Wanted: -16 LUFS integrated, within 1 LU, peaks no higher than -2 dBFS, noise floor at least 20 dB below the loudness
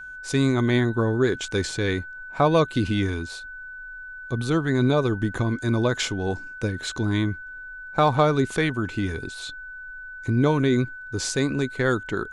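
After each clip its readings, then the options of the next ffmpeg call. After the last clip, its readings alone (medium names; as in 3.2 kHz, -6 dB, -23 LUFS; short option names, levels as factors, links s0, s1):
steady tone 1.5 kHz; tone level -36 dBFS; loudness -24.0 LUFS; peak level -6.5 dBFS; loudness target -16.0 LUFS
-> -af "bandreject=f=1500:w=30"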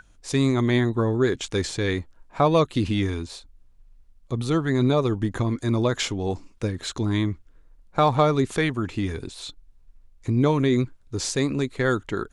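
steady tone not found; loudness -24.0 LUFS; peak level -6.5 dBFS; loudness target -16.0 LUFS
-> -af "volume=2.51,alimiter=limit=0.794:level=0:latency=1"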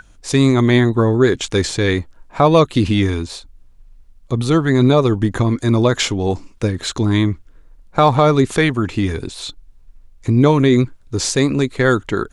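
loudness -16.5 LUFS; peak level -2.0 dBFS; noise floor -47 dBFS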